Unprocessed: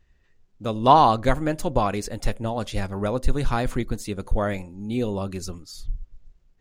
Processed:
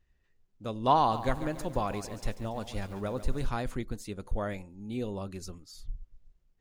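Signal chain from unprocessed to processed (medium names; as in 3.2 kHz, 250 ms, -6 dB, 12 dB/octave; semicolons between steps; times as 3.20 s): 0.97–3.49 s: bit-crushed delay 141 ms, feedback 55%, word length 7-bit, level -12 dB; trim -9 dB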